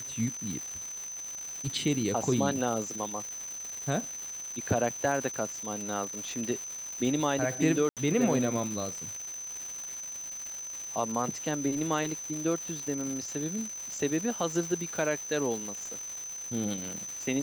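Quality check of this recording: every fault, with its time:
surface crackle 480 per second −35 dBFS
whistle 6,100 Hz −37 dBFS
0:07.89–0:07.97: drop-out 77 ms

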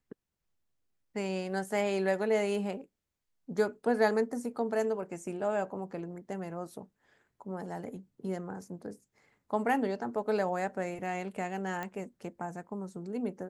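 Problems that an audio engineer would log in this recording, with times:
0:11.83: click −23 dBFS

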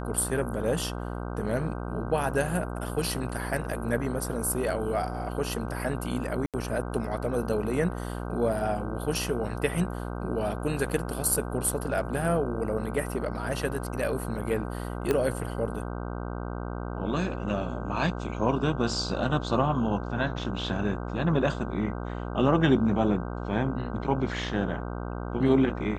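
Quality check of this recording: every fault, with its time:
mains buzz 60 Hz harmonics 26 −34 dBFS
0:06.46–0:06.54: drop-out 77 ms
0:15.11: click −12 dBFS

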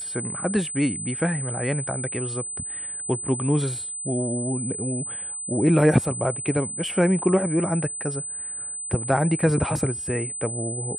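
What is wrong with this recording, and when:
whistle 8,100 Hz −30 dBFS

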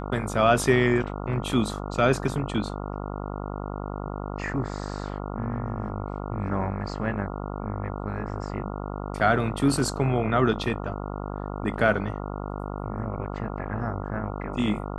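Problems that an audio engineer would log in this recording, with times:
mains buzz 50 Hz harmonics 28 −33 dBFS

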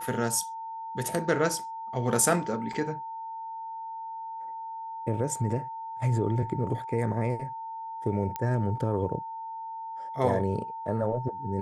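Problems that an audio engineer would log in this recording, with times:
whistle 900 Hz −35 dBFS
0:02.73: drop-out 4.3 ms
0:08.36: click −17 dBFS

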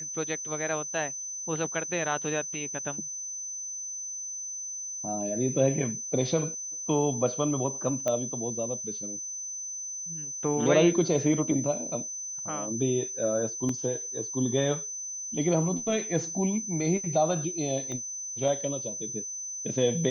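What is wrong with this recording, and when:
whistle 6,100 Hz −34 dBFS
0:08.08: click −15 dBFS
0:13.69: drop-out 2.9 ms
0:17.92: click −25 dBFS

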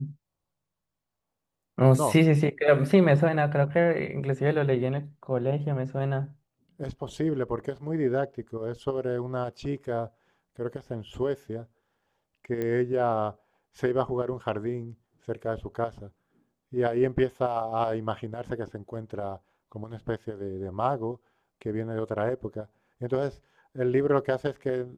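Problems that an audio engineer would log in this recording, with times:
0:12.62: click −19 dBFS

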